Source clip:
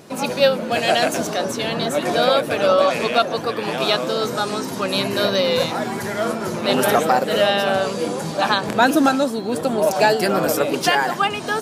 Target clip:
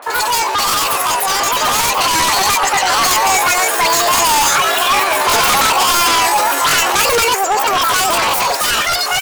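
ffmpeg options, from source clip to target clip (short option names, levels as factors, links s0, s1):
-filter_complex "[0:a]highpass=500,acrossover=split=1200[s0][s1];[s1]adelay=40[s2];[s0][s2]amix=inputs=2:normalize=0,asetrate=55566,aresample=44100,asplit=2[s3][s4];[s4]aeval=exprs='0.596*sin(PI/2*8.91*val(0)/0.596)':c=same,volume=0.376[s5];[s3][s5]amix=inputs=2:normalize=0,asetrate=60591,aresample=44100,atempo=0.727827,dynaudnorm=f=470:g=9:m=3.76,volume=0.891"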